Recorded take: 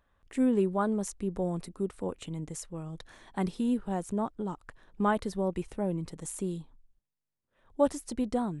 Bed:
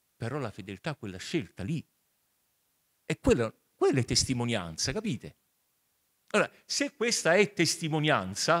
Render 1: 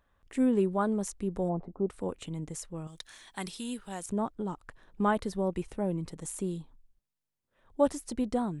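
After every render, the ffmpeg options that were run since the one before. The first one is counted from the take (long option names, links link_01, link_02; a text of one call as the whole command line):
ffmpeg -i in.wav -filter_complex "[0:a]asplit=3[link_01][link_02][link_03];[link_01]afade=type=out:start_time=1.48:duration=0.02[link_04];[link_02]lowpass=frequency=770:width_type=q:width=2.6,afade=type=in:start_time=1.48:duration=0.02,afade=type=out:start_time=1.88:duration=0.02[link_05];[link_03]afade=type=in:start_time=1.88:duration=0.02[link_06];[link_04][link_05][link_06]amix=inputs=3:normalize=0,asettb=1/sr,asplit=3[link_07][link_08][link_09];[link_07]atrim=end=2.874[link_10];[link_08]atrim=start=2.87:end=4.06,asetpts=PTS-STARTPTS,afade=type=in:duration=0.004:curve=qsin,afade=type=out:start_time=1.186:duration=0.004:curve=qsin,tiltshelf=frequency=1500:gain=-10[link_11];[link_09]atrim=start=4.056[link_12];[link_10][link_11]acrossfade=duration=0.004:curve1=hsin:curve2=qsin[link_13];[link_13][link_12]acrossfade=duration=0.004:curve1=qsin:curve2=hsin" out.wav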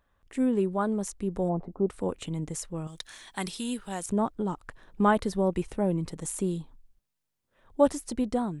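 ffmpeg -i in.wav -af "dynaudnorm=framelen=570:gausssize=5:maxgain=4.5dB" out.wav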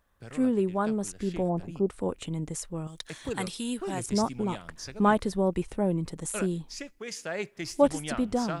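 ffmpeg -i in.wav -i bed.wav -filter_complex "[1:a]volume=-10.5dB[link_01];[0:a][link_01]amix=inputs=2:normalize=0" out.wav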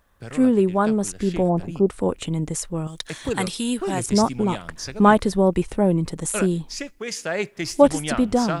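ffmpeg -i in.wav -af "volume=8dB,alimiter=limit=-2dB:level=0:latency=1" out.wav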